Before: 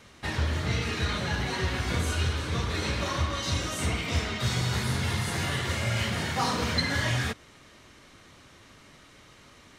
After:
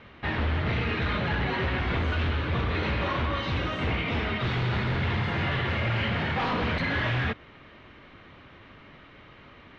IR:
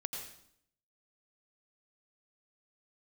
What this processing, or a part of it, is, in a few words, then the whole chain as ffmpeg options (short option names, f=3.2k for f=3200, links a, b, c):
synthesiser wavefolder: -af "aeval=exprs='0.0562*(abs(mod(val(0)/0.0562+3,4)-2)-1)':c=same,lowpass=f=3.1k:w=0.5412,lowpass=f=3.1k:w=1.3066,volume=4dB"